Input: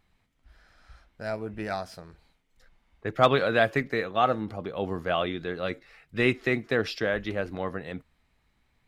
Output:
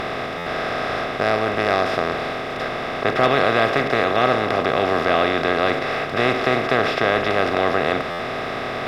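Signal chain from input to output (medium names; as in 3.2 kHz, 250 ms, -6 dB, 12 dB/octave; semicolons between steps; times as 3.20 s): spectral levelling over time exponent 0.2; buffer glitch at 0.37/8.10 s, samples 512, times 7; trim -2 dB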